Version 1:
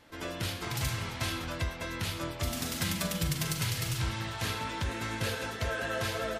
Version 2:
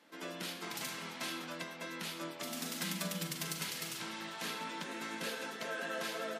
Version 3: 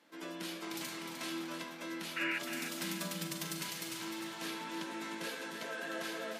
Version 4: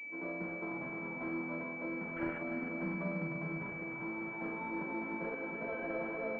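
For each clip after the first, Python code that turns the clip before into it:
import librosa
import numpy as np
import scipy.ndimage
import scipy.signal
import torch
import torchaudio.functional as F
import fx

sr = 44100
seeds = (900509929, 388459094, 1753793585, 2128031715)

y1 = scipy.signal.sosfilt(scipy.signal.cheby1(5, 1.0, 170.0, 'highpass', fs=sr, output='sos'), x)
y1 = y1 * 10.0 ** (-5.0 / 20.0)
y2 = fx.spec_paint(y1, sr, seeds[0], shape='noise', start_s=2.16, length_s=0.23, low_hz=1300.0, high_hz=2900.0, level_db=-34.0)
y2 = fx.comb_fb(y2, sr, f0_hz=330.0, decay_s=0.33, harmonics='odd', damping=0.0, mix_pct=70)
y2 = fx.echo_feedback(y2, sr, ms=304, feedback_pct=38, wet_db=-8.0)
y2 = y2 * 10.0 ** (7.5 / 20.0)
y3 = fx.air_absorb(y2, sr, metres=420.0)
y3 = fx.doubler(y3, sr, ms=44.0, db=-8)
y3 = fx.pwm(y3, sr, carrier_hz=2300.0)
y3 = y3 * 10.0 ** (5.5 / 20.0)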